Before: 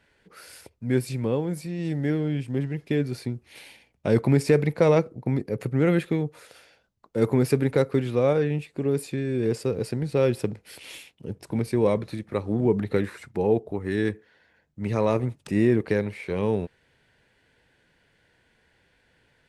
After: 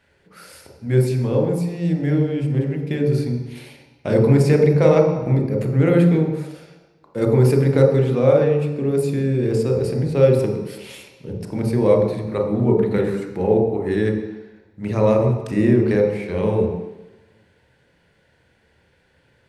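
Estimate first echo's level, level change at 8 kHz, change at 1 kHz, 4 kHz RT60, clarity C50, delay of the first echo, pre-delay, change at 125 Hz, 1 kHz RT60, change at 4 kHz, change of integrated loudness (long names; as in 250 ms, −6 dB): no echo audible, can't be measured, +4.5 dB, 1.3 s, 4.0 dB, no echo audible, 27 ms, +8.0 dB, 1.2 s, +2.5 dB, +6.5 dB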